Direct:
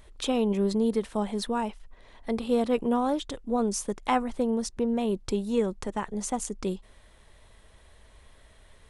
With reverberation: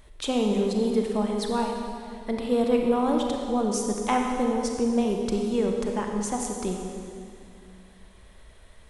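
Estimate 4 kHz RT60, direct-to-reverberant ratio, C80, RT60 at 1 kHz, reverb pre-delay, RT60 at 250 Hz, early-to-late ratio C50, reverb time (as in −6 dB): 2.2 s, 1.5 dB, 3.5 dB, 2.3 s, 30 ms, 2.8 s, 2.0 dB, 2.4 s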